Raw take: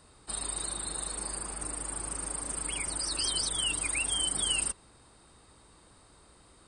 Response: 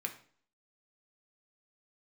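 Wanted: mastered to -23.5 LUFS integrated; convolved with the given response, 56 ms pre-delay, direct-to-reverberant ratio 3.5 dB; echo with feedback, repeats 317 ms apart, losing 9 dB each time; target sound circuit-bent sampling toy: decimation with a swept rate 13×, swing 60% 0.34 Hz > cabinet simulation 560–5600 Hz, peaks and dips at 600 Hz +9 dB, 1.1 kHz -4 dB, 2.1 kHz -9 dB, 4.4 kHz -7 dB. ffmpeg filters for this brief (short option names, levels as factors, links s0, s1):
-filter_complex "[0:a]aecho=1:1:317|634|951|1268:0.355|0.124|0.0435|0.0152,asplit=2[s0][s1];[1:a]atrim=start_sample=2205,adelay=56[s2];[s1][s2]afir=irnorm=-1:irlink=0,volume=0.596[s3];[s0][s3]amix=inputs=2:normalize=0,acrusher=samples=13:mix=1:aa=0.000001:lfo=1:lforange=7.8:lforate=0.34,highpass=560,equalizer=f=600:t=q:w=4:g=9,equalizer=f=1100:t=q:w=4:g=-4,equalizer=f=2100:t=q:w=4:g=-9,equalizer=f=4400:t=q:w=4:g=-7,lowpass=f=5600:w=0.5412,lowpass=f=5600:w=1.3066,volume=3.35"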